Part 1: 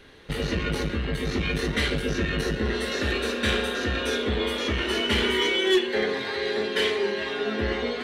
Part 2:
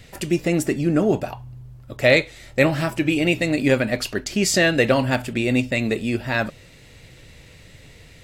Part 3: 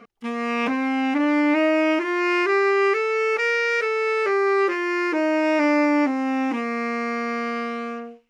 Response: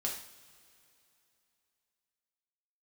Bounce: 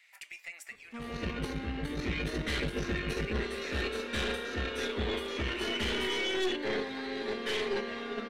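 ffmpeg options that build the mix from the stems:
-filter_complex "[0:a]agate=range=-12dB:threshold=-24dB:ratio=16:detection=peak,dynaudnorm=framelen=100:gausssize=13:maxgain=5.5dB,adelay=700,volume=-1.5dB[link_01];[1:a]highpass=frequency=880:width=0.5412,highpass=frequency=880:width=1.3066,equalizer=frequency=2200:width=2.6:gain=13,volume=-15dB,asplit=3[link_02][link_03][link_04];[link_02]atrim=end=3.82,asetpts=PTS-STARTPTS,afade=type=out:start_time=3.816:duration=0.004:curve=hsin[link_05];[link_03]atrim=start=3.82:end=4.7,asetpts=PTS-STARTPTS,volume=0[link_06];[link_04]atrim=start=4.7,asetpts=PTS-STARTPTS,afade=type=in:duration=0.004:curve=hsin[link_07];[link_05][link_06][link_07]concat=n=3:v=0:a=1[link_08];[2:a]acrossover=split=360[link_09][link_10];[link_10]acompressor=threshold=-28dB:ratio=6[link_11];[link_09][link_11]amix=inputs=2:normalize=0,adelay=700,volume=-7dB[link_12];[link_08][link_12]amix=inputs=2:normalize=0,acompressor=threshold=-38dB:ratio=3,volume=0dB[link_13];[link_01][link_13]amix=inputs=2:normalize=0,aeval=exprs='(tanh(5.62*val(0)+0.6)-tanh(0.6))/5.62':channel_layout=same,alimiter=limit=-23dB:level=0:latency=1:release=11"

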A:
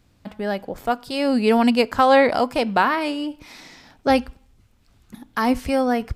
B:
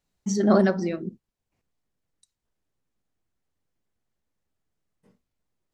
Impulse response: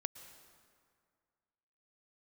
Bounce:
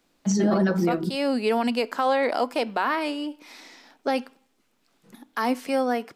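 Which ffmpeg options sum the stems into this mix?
-filter_complex "[0:a]highpass=frequency=250:width=0.5412,highpass=frequency=250:width=1.3066,volume=-3dB[link_01];[1:a]aecho=1:1:6:0.65,volume=2dB[link_02];[link_01][link_02]amix=inputs=2:normalize=0,alimiter=limit=-14dB:level=0:latency=1:release=37"

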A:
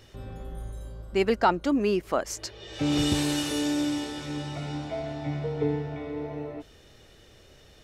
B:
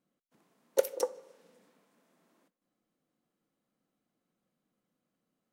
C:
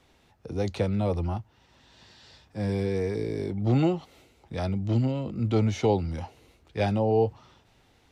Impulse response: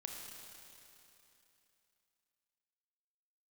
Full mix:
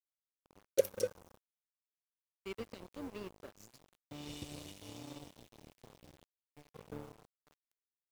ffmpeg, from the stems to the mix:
-filter_complex "[0:a]adelay=1300,volume=-17dB,asplit=2[link_01][link_02];[link_02]volume=-11.5dB[link_03];[1:a]volume=-2.5dB,asplit=2[link_04][link_05];[link_05]volume=-10.5dB[link_06];[2:a]alimiter=limit=-20dB:level=0:latency=1:release=170,acompressor=threshold=-32dB:ratio=12,volume=-15dB,asplit=2[link_07][link_08];[link_08]volume=-7.5dB[link_09];[3:a]atrim=start_sample=2205[link_10];[link_03][link_06][link_09]amix=inputs=3:normalize=0[link_11];[link_11][link_10]afir=irnorm=-1:irlink=0[link_12];[link_01][link_04][link_07][link_12]amix=inputs=4:normalize=0,asuperstop=centerf=1100:order=20:qfactor=0.82,aeval=exprs='sgn(val(0))*max(abs(val(0))-0.00708,0)':channel_layout=same,acrusher=bits=9:mix=0:aa=0.000001"

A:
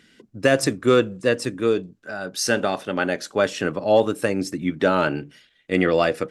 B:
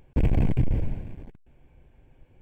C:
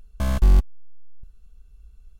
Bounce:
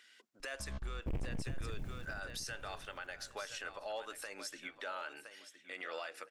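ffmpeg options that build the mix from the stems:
ffmpeg -i stem1.wav -i stem2.wav -i stem3.wav -filter_complex "[0:a]highpass=990,acompressor=threshold=-36dB:ratio=2,volume=-5dB,asplit=3[link_01][link_02][link_03];[link_02]volume=-14dB[link_04];[1:a]acrusher=bits=8:mix=0:aa=0.000001,asoftclip=type=tanh:threshold=-21dB,adelay=900,volume=-8dB,asplit=2[link_05][link_06];[link_06]volume=-17dB[link_07];[2:a]lowpass=frequency=5600:width=0.5412,lowpass=frequency=5600:width=1.3066,adelay=400,volume=-15.5dB[link_08];[link_03]apad=whole_len=114369[link_09];[link_08][link_09]sidechaincompress=threshold=-39dB:ratio=8:attack=6.6:release=238[link_10];[link_01][link_05]amix=inputs=2:normalize=0,alimiter=level_in=6.5dB:limit=-24dB:level=0:latency=1:release=90,volume=-6.5dB,volume=0dB[link_11];[link_04][link_07]amix=inputs=2:normalize=0,aecho=0:1:1015|2030|3045:1|0.2|0.04[link_12];[link_10][link_11][link_12]amix=inputs=3:normalize=0,alimiter=level_in=8dB:limit=-24dB:level=0:latency=1:release=173,volume=-8dB" out.wav

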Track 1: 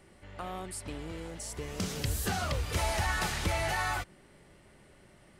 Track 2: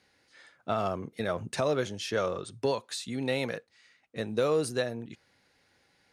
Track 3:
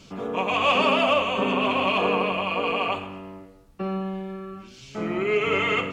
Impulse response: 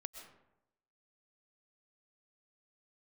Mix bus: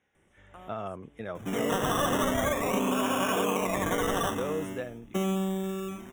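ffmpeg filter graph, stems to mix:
-filter_complex "[0:a]adelay=150,volume=-9dB[link_01];[1:a]highshelf=frequency=5600:gain=-11.5,volume=-6dB,asplit=2[link_02][link_03];[2:a]equalizer=frequency=270:width=1.4:gain=5,acrusher=samples=15:mix=1:aa=0.000001:lfo=1:lforange=9:lforate=0.41,adelay=1350,volume=0dB[link_04];[link_03]apad=whole_len=244748[link_05];[link_01][link_05]sidechaincompress=threshold=-51dB:ratio=12:attack=45:release=452[link_06];[link_06][link_02][link_04]amix=inputs=3:normalize=0,asuperstop=centerf=4500:order=8:qfactor=2.4,acompressor=threshold=-24dB:ratio=6"

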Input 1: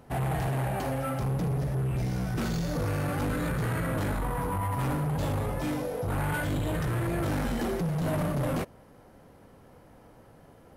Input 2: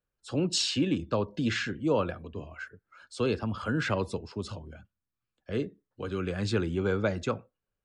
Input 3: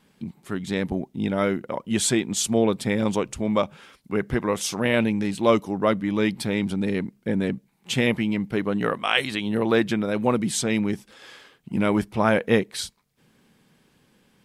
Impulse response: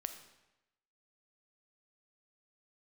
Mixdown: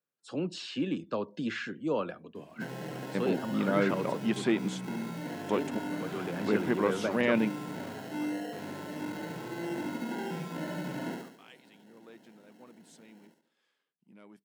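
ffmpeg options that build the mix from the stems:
-filter_complex "[0:a]equalizer=frequency=280:width=0.73:gain=12,acrusher=samples=37:mix=1:aa=0.000001,adelay=2500,volume=-16dB,asplit=2[link_01][link_02];[link_02]volume=-3dB[link_03];[1:a]volume=-4dB,asplit=2[link_04][link_05];[2:a]acontrast=89,adelay=2350,volume=-11dB[link_06];[link_05]apad=whole_len=740813[link_07];[link_06][link_07]sidechaingate=range=-28dB:threshold=-49dB:ratio=16:detection=peak[link_08];[link_03]aecho=0:1:70|140|210|280|350|420:1|0.46|0.212|0.0973|0.0448|0.0206[link_09];[link_01][link_04][link_08][link_09]amix=inputs=4:normalize=0,highpass=frequency=160:width=0.5412,highpass=frequency=160:width=1.3066,acrossover=split=3000[link_10][link_11];[link_11]acompressor=threshold=-48dB:ratio=4:attack=1:release=60[link_12];[link_10][link_12]amix=inputs=2:normalize=0"

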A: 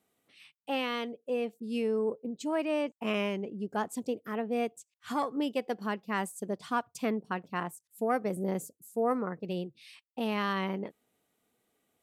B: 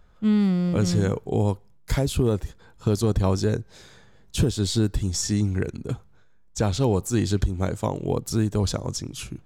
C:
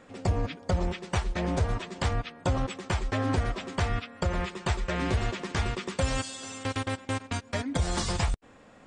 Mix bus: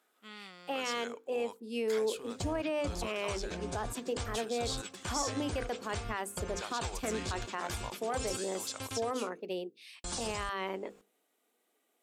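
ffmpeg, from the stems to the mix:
ffmpeg -i stem1.wav -i stem2.wav -i stem3.wav -filter_complex "[0:a]highpass=frequency=270:width=0.5412,highpass=frequency=270:width=1.3066,bandreject=frequency=50:width_type=h:width=6,bandreject=frequency=100:width_type=h:width=6,bandreject=frequency=150:width_type=h:width=6,bandreject=frequency=200:width_type=h:width=6,bandreject=frequency=250:width_type=h:width=6,bandreject=frequency=300:width_type=h:width=6,bandreject=frequency=350:width_type=h:width=6,bandreject=frequency=400:width_type=h:width=6,bandreject=frequency=450:width_type=h:width=6,bandreject=frequency=500:width_type=h:width=6,volume=0.5dB[link_01];[1:a]highpass=1100,highshelf=frequency=12000:gain=-7.5,acontrast=37,volume=-13.5dB[link_02];[2:a]aemphasis=mode=production:type=75kf,bandreject=frequency=1900:width=8.7,adelay=2150,volume=-12dB,asplit=3[link_03][link_04][link_05];[link_03]atrim=end=9.15,asetpts=PTS-STARTPTS,afade=type=out:start_time=9.146:duration=0.004:curve=hsin[link_06];[link_04]atrim=start=9.15:end=10.04,asetpts=PTS-STARTPTS,volume=0[link_07];[link_05]atrim=start=10.04,asetpts=PTS-STARTPTS,afade=type=in:duration=0.004:curve=hsin[link_08];[link_06][link_07][link_08]concat=n=3:v=0:a=1[link_09];[link_01][link_09]amix=inputs=2:normalize=0,alimiter=level_in=1.5dB:limit=-24dB:level=0:latency=1:release=34,volume=-1.5dB,volume=0dB[link_10];[link_02][link_10]amix=inputs=2:normalize=0" out.wav

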